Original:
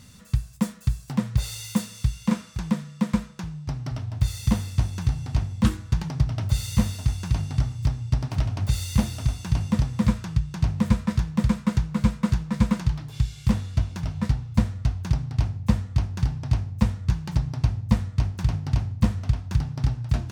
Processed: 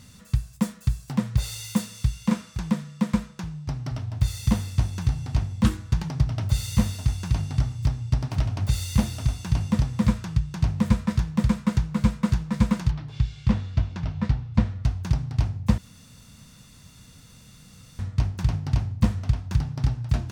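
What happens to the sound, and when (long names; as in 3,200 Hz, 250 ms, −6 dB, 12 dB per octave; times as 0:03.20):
0:12.91–0:14.84: low-pass filter 4,300 Hz
0:15.78–0:17.99: fill with room tone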